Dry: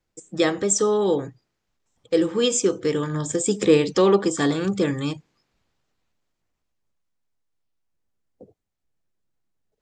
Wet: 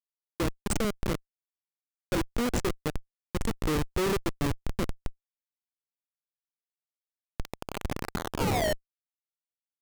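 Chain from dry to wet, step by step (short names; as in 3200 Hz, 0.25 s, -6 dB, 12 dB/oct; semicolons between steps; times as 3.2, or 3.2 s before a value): painted sound fall, 7.39–8.74, 550–4900 Hz -19 dBFS; Schmitt trigger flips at -16 dBFS; record warp 45 rpm, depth 160 cents; gain -3 dB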